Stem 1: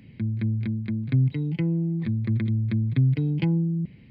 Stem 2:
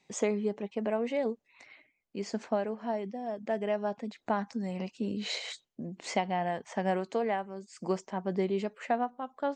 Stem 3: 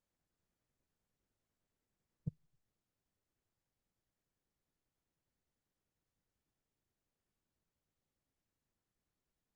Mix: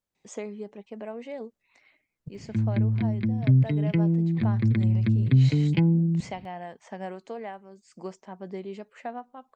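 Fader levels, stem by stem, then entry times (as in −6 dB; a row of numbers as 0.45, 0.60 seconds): +2.0, −6.5, 0.0 decibels; 2.35, 0.15, 0.00 seconds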